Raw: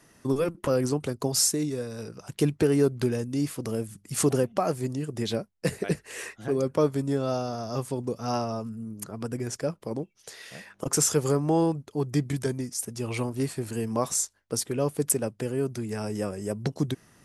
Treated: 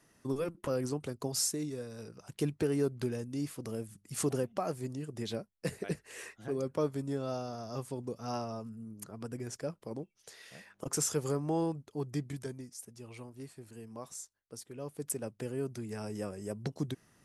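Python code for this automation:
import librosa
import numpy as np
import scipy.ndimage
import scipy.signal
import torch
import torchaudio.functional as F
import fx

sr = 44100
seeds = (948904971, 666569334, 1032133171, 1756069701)

y = fx.gain(x, sr, db=fx.line((12.01, -8.5), (13.17, -18.0), (14.65, -18.0), (15.38, -8.0)))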